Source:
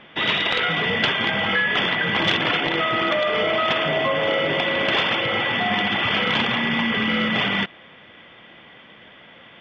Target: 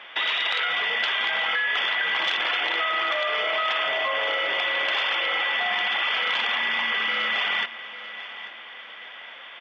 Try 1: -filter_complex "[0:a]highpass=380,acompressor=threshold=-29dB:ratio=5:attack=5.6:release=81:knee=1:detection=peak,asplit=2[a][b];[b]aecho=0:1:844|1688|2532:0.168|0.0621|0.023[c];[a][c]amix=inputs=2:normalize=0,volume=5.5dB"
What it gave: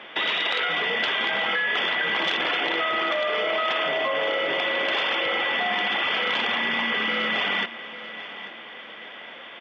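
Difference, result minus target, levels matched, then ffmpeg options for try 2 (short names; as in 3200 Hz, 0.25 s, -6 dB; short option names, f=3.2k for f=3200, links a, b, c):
500 Hz band +5.0 dB
-filter_complex "[0:a]highpass=820,acompressor=threshold=-29dB:ratio=5:attack=5.6:release=81:knee=1:detection=peak,asplit=2[a][b];[b]aecho=0:1:844|1688|2532:0.168|0.0621|0.023[c];[a][c]amix=inputs=2:normalize=0,volume=5.5dB"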